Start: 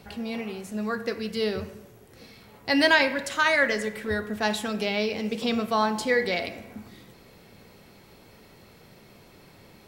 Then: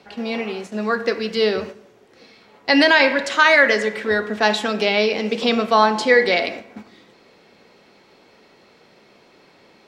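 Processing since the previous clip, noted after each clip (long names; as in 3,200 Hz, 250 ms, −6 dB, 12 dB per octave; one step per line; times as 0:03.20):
noise gate −39 dBFS, range −7 dB
three-way crossover with the lows and the highs turned down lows −17 dB, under 220 Hz, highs −21 dB, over 6,700 Hz
boost into a limiter +11 dB
level −1.5 dB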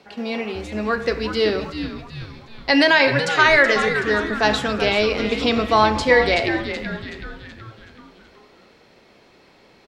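echo with shifted repeats 376 ms, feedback 51%, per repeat −150 Hz, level −9 dB
level −1 dB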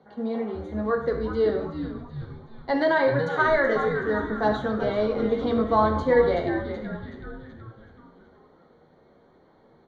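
flanger 0.4 Hz, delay 7.8 ms, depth 4.4 ms, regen −47%
moving average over 17 samples
convolution reverb, pre-delay 3 ms, DRR 5.5 dB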